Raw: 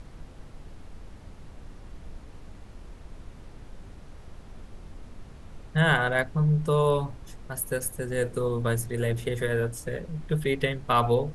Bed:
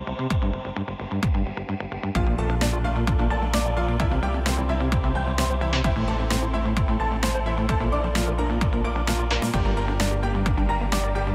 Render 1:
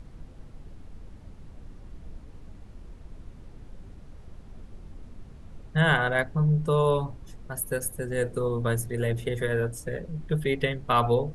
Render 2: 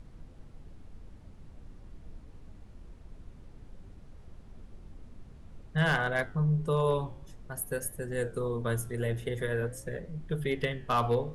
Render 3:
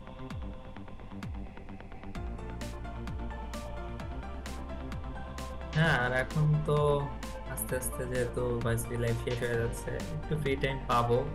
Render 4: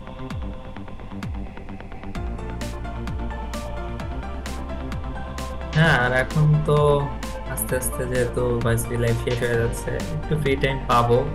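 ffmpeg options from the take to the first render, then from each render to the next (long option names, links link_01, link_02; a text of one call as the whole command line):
ffmpeg -i in.wav -af "afftdn=noise_reduction=6:noise_floor=-47" out.wav
ffmpeg -i in.wav -af "asoftclip=type=hard:threshold=-14.5dB,flanger=delay=8.5:depth=9.4:regen=-86:speed=0.49:shape=triangular" out.wav
ffmpeg -i in.wav -i bed.wav -filter_complex "[1:a]volume=-17.5dB[link_01];[0:a][link_01]amix=inputs=2:normalize=0" out.wav
ffmpeg -i in.wav -af "volume=9.5dB" out.wav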